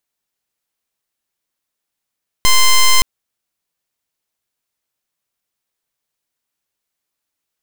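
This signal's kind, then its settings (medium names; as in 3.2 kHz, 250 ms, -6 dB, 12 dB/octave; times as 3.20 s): pulse 1.04 kHz, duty 8% -8.5 dBFS 0.57 s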